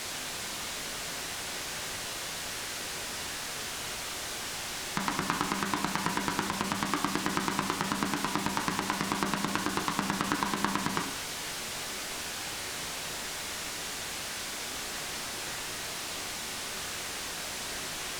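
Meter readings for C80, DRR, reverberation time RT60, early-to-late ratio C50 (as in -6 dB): 11.5 dB, 2.5 dB, 0.60 s, 8.0 dB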